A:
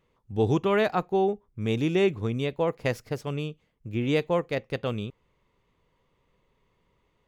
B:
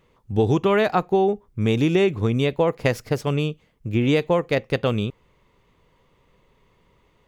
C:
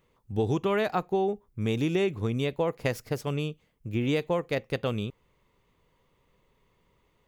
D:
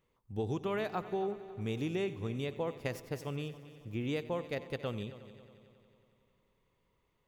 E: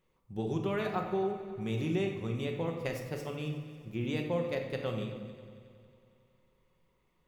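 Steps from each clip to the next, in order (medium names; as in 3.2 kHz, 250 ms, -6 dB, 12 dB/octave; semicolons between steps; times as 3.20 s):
compression 5:1, threshold -24 dBFS, peak gain reduction 6.5 dB; trim +9 dB
treble shelf 9.4 kHz +8.5 dB; trim -7.5 dB
multi-head delay 91 ms, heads first and third, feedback 61%, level -17 dB; trim -8.5 dB
simulated room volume 530 m³, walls mixed, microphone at 1 m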